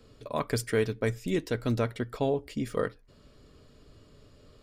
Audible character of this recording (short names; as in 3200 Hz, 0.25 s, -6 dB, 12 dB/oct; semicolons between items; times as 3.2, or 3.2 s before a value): noise floor -58 dBFS; spectral tilt -6.0 dB/oct